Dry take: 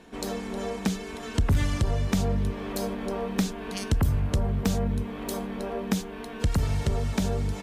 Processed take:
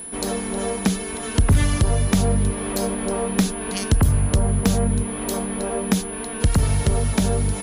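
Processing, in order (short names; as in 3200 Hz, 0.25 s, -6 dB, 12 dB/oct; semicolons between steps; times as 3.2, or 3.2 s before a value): whine 10000 Hz -39 dBFS; gain +6.5 dB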